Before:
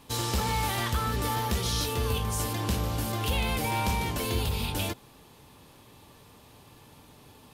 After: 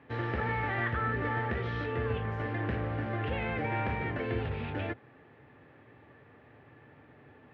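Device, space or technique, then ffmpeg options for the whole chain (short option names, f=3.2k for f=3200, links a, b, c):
bass cabinet: -af "highpass=f=83:w=0.5412,highpass=f=83:w=1.3066,equalizer=f=90:t=q:w=4:g=-4,equalizer=f=190:t=q:w=4:g=-9,equalizer=f=990:t=q:w=4:g=-10,equalizer=f=1.8k:t=q:w=4:g=8,lowpass=f=2.1k:w=0.5412,lowpass=f=2.1k:w=1.3066"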